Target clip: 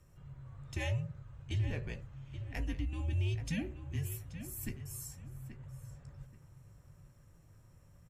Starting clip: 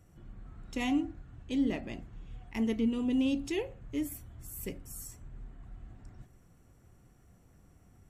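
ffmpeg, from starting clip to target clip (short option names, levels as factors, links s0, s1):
-filter_complex "[0:a]acompressor=threshold=0.0251:ratio=2.5,asplit=2[s0][s1];[s1]adelay=15,volume=0.251[s2];[s0][s2]amix=inputs=2:normalize=0,asplit=2[s3][s4];[s4]adelay=830,lowpass=f=3300:p=1,volume=0.299,asplit=2[s5][s6];[s6]adelay=830,lowpass=f=3300:p=1,volume=0.24,asplit=2[s7][s8];[s8]adelay=830,lowpass=f=3300:p=1,volume=0.24[s9];[s5][s7][s9]amix=inputs=3:normalize=0[s10];[s3][s10]amix=inputs=2:normalize=0,afreqshift=-170,volume=0.891"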